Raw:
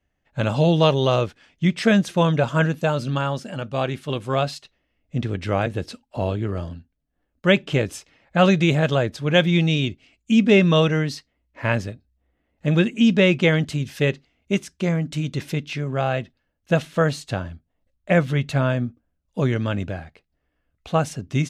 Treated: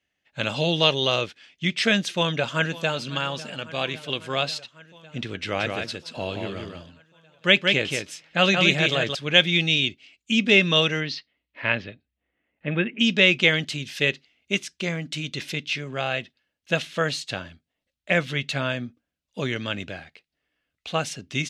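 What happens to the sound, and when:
2.12–2.94 echo throw 0.55 s, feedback 75%, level -17.5 dB
5.37–9.15 echo 0.176 s -4.5 dB
11–12.99 LPF 5100 Hz -> 2200 Hz 24 dB/oct
whole clip: weighting filter D; gain -5 dB

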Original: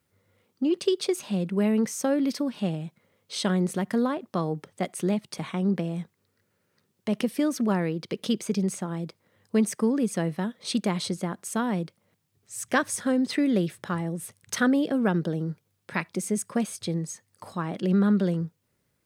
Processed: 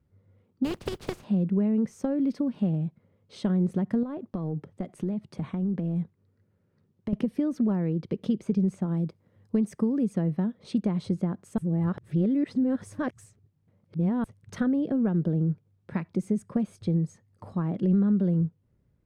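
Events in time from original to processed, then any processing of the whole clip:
0.64–1.23 spectral contrast lowered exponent 0.33
4.03–7.13 compressor, threshold -29 dBFS
8.84–10.13 high shelf 4500 Hz +7 dB
11.58–14.24 reverse
whole clip: compressor 4:1, threshold -25 dBFS; tilt -4.5 dB/oct; gain -5.5 dB

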